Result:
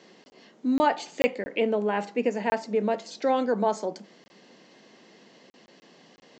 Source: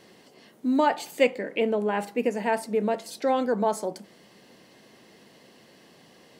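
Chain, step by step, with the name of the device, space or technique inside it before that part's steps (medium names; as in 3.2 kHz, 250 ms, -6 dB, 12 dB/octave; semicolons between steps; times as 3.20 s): call with lost packets (high-pass 160 Hz 24 dB/octave; resampled via 16 kHz; lost packets)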